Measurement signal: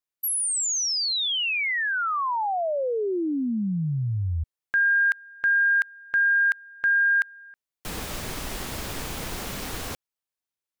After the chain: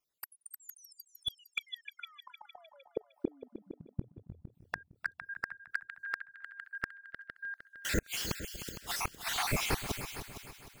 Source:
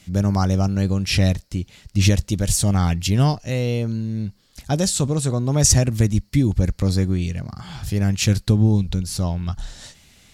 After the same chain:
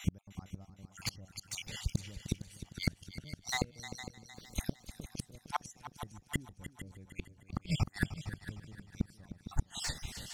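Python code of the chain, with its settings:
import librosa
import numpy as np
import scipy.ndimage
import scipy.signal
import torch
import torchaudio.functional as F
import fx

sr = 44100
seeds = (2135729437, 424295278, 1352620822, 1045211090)

p1 = fx.spec_dropout(x, sr, seeds[0], share_pct=54)
p2 = np.clip(p1, -10.0 ** (-14.0 / 20.0), 10.0 ** (-14.0 / 20.0))
p3 = p1 + F.gain(torch.from_numpy(p2), -8.0).numpy()
p4 = fx.gate_flip(p3, sr, shuts_db=-21.0, range_db=-40)
p5 = fx.echo_heads(p4, sr, ms=153, heads='second and third', feedback_pct=42, wet_db=-12.5)
p6 = fx.slew_limit(p5, sr, full_power_hz=82.0)
y = F.gain(torch.from_numpy(p6), 4.0).numpy()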